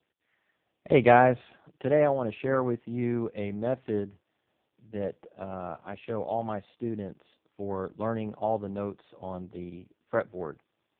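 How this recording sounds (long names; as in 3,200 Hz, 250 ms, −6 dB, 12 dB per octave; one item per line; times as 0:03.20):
a quantiser's noise floor 12 bits, dither none
AMR narrowband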